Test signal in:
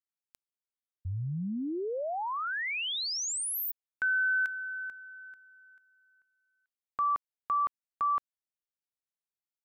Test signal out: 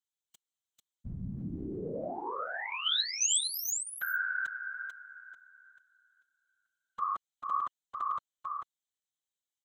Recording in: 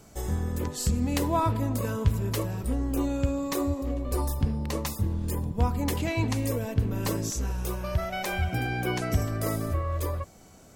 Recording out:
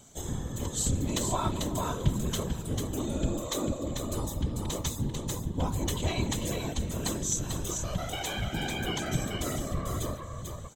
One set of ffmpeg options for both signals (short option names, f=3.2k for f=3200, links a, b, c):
-af "superequalizer=13b=3.16:15b=3.16,aecho=1:1:443:0.562,afftfilt=real='hypot(re,im)*cos(2*PI*random(0))':imag='hypot(re,im)*sin(2*PI*random(1))':win_size=512:overlap=0.75,volume=1dB"